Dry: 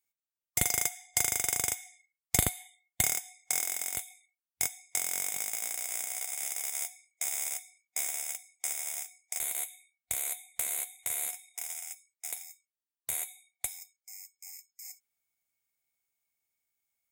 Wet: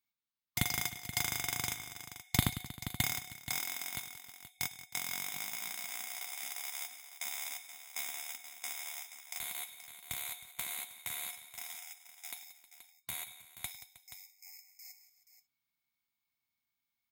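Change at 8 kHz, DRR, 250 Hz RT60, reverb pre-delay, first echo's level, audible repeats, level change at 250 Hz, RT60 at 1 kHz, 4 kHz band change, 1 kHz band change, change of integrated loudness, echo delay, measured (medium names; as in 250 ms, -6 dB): -10.0 dB, no reverb, no reverb, no reverb, -18.5 dB, 4, +2.5 dB, no reverb, +1.0 dB, -2.0 dB, -6.0 dB, 102 ms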